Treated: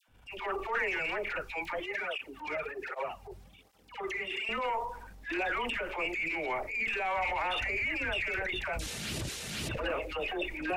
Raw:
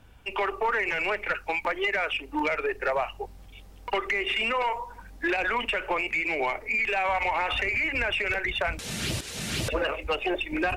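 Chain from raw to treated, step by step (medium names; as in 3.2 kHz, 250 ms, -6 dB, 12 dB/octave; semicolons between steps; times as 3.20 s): phase dispersion lows, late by 85 ms, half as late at 1.1 kHz; transient shaper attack -9 dB, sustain +5 dB; 1.80–4.49 s: cancelling through-zero flanger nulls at 1.3 Hz, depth 4.3 ms; trim -5 dB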